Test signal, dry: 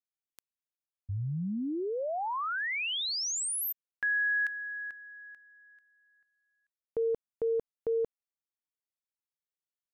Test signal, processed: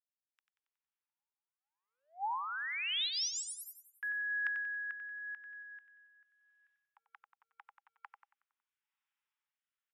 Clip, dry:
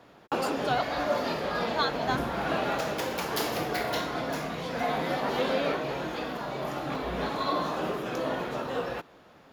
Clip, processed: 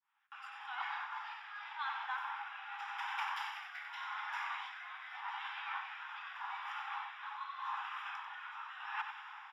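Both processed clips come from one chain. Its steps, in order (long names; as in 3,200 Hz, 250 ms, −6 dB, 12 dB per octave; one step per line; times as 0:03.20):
fade in at the beginning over 2.55 s
Savitzky-Golay smoothing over 25 samples
reversed playback
downward compressor 16 to 1, threshold −43 dBFS
reversed playback
Chebyshev high-pass filter 810 Hz, order 8
on a send: repeating echo 92 ms, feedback 49%, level −8 dB
on the sum: rotating-speaker cabinet horn 0.85 Hz
level +12 dB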